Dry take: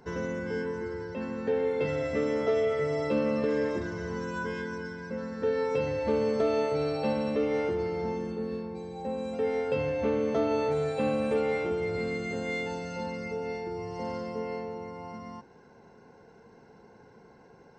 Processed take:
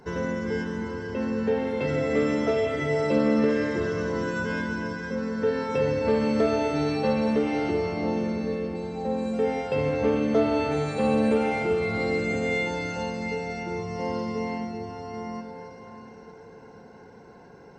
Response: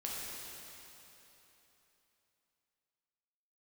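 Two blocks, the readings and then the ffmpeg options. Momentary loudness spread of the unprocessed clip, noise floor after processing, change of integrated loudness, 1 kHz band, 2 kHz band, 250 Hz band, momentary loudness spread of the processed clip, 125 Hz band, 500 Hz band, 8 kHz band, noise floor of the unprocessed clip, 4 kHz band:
9 LU, -48 dBFS, +4.0 dB, +5.0 dB, +6.0 dB, +7.0 dB, 9 LU, +6.0 dB, +2.5 dB, n/a, -56 dBFS, +5.5 dB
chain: -filter_complex "[0:a]asplit=2[a][b];[1:a]atrim=start_sample=2205,asetrate=29547,aresample=44100[c];[b][c]afir=irnorm=-1:irlink=0,volume=-3dB[d];[a][d]amix=inputs=2:normalize=0"

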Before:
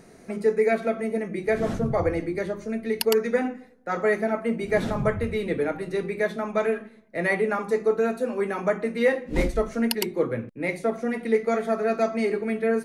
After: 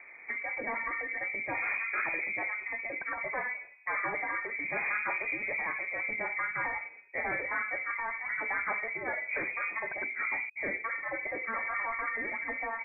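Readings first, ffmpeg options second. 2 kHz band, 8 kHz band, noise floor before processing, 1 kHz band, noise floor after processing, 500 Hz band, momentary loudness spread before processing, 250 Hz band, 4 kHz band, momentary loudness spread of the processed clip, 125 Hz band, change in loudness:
+2.0 dB, under -40 dB, -51 dBFS, -4.5 dB, -51 dBFS, -19.5 dB, 6 LU, -21.5 dB, under -40 dB, 4 LU, -23.0 dB, -7.0 dB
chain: -af "afftfilt=real='re*lt(hypot(re,im),0.251)':imag='im*lt(hypot(re,im),0.251)':win_size=1024:overlap=0.75,asoftclip=type=hard:threshold=-25.5dB,lowpass=f=2.1k:t=q:w=0.5098,lowpass=f=2.1k:t=q:w=0.6013,lowpass=f=2.1k:t=q:w=0.9,lowpass=f=2.1k:t=q:w=2.563,afreqshift=-2500"

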